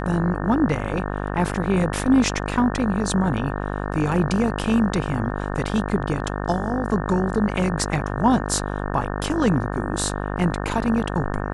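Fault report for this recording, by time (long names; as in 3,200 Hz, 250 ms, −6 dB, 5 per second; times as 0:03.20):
mains buzz 50 Hz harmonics 36 −27 dBFS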